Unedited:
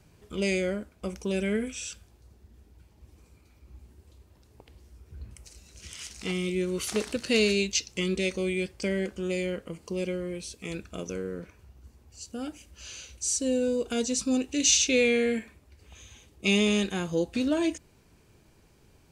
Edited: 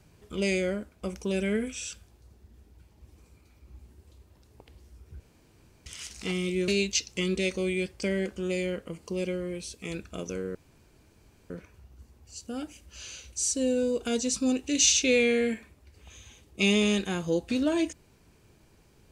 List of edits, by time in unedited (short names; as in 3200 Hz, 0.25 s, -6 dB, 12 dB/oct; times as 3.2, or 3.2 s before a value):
5.2–5.86 room tone
6.68–7.48 cut
11.35 insert room tone 0.95 s